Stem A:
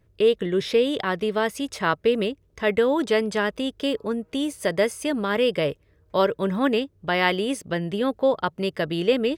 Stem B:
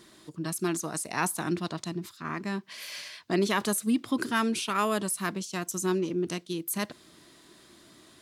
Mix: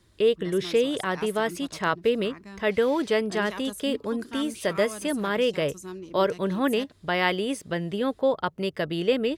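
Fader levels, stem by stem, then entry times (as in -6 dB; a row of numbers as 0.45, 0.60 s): -2.5, -11.0 dB; 0.00, 0.00 s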